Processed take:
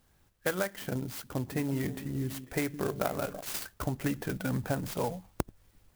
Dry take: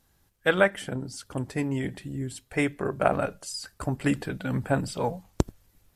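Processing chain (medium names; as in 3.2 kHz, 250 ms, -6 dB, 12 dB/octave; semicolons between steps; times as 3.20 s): compression 10:1, threshold -27 dBFS, peak gain reduction 13 dB; 1.07–3.41 s: repeats whose band climbs or falls 165 ms, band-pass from 210 Hz, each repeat 1.4 oct, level -8 dB; sampling jitter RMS 0.052 ms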